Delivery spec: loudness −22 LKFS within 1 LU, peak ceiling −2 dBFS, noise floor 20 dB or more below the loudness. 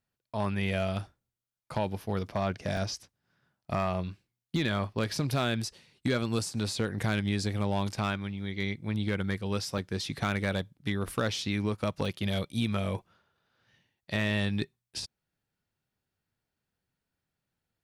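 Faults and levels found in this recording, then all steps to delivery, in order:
share of clipped samples 0.2%; peaks flattened at −20.5 dBFS; number of dropouts 4; longest dropout 2.2 ms; integrated loudness −32.0 LKFS; sample peak −20.5 dBFS; target loudness −22.0 LKFS
→ clipped peaks rebuilt −20.5 dBFS
repair the gap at 0:02.77/0:09.78/0:11.10/0:12.05, 2.2 ms
level +10 dB

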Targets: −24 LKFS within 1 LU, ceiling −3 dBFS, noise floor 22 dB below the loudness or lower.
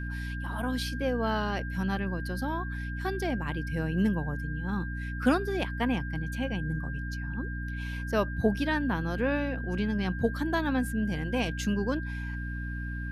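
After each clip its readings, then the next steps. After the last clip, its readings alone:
mains hum 60 Hz; hum harmonics up to 300 Hz; level of the hum −33 dBFS; interfering tone 1,600 Hz; level of the tone −40 dBFS; integrated loudness −31.0 LKFS; sample peak −11.0 dBFS; target loudness −24.0 LKFS
→ hum removal 60 Hz, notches 5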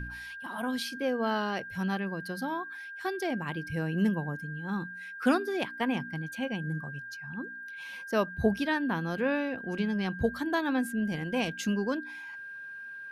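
mains hum none found; interfering tone 1,600 Hz; level of the tone −40 dBFS
→ notch filter 1,600 Hz, Q 30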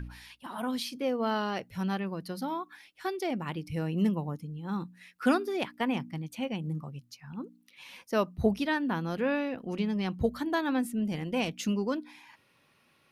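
interfering tone none found; integrated loudness −32.0 LKFS; sample peak −12.0 dBFS; target loudness −24.0 LKFS
→ level +8 dB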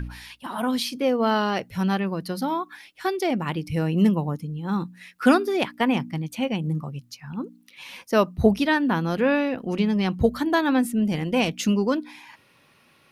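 integrated loudness −24.0 LKFS; sample peak −4.0 dBFS; background noise floor −59 dBFS

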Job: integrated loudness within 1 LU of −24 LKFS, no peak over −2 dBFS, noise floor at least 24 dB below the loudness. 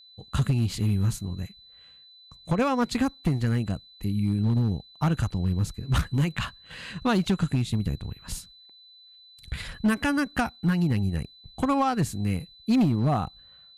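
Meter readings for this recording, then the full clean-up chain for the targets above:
share of clipped samples 1.1%; peaks flattened at −17.0 dBFS; interfering tone 4,000 Hz; level of the tone −50 dBFS; integrated loudness −27.0 LKFS; sample peak −17.0 dBFS; target loudness −24.0 LKFS
→ clipped peaks rebuilt −17 dBFS
notch filter 4,000 Hz, Q 30
level +3 dB

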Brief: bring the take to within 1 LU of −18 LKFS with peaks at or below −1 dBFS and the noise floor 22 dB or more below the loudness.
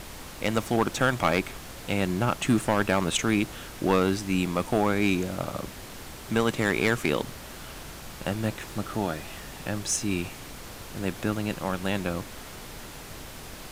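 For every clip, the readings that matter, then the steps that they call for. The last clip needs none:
share of clipped samples 0.4%; peaks flattened at −14.0 dBFS; background noise floor −42 dBFS; target noise floor −50 dBFS; integrated loudness −27.5 LKFS; sample peak −14.0 dBFS; target loudness −18.0 LKFS
→ clipped peaks rebuilt −14 dBFS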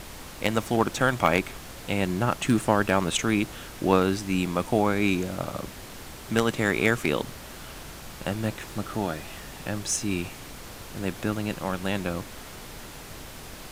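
share of clipped samples 0.0%; background noise floor −42 dBFS; target noise floor −49 dBFS
→ noise reduction from a noise print 7 dB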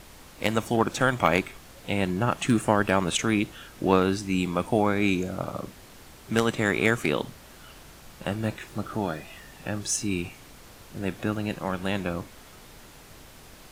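background noise floor −49 dBFS; integrated loudness −26.5 LKFS; sample peak −5.0 dBFS; target loudness −18.0 LKFS
→ level +8.5 dB
brickwall limiter −1 dBFS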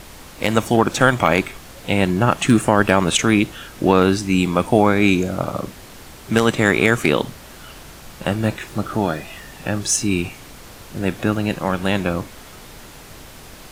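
integrated loudness −18.5 LKFS; sample peak −1.0 dBFS; background noise floor −41 dBFS

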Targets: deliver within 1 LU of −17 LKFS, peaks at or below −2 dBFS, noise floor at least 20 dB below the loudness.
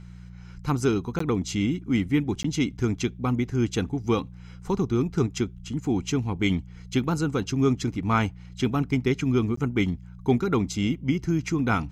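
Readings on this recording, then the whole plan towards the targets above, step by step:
number of dropouts 3; longest dropout 14 ms; mains hum 60 Hz; hum harmonics up to 180 Hz; level of the hum −41 dBFS; integrated loudness −26.0 LKFS; sample peak −10.0 dBFS; target loudness −17.0 LKFS
→ repair the gap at 0:01.19/0:02.43/0:09.56, 14 ms
hum removal 60 Hz, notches 3
level +9 dB
brickwall limiter −2 dBFS

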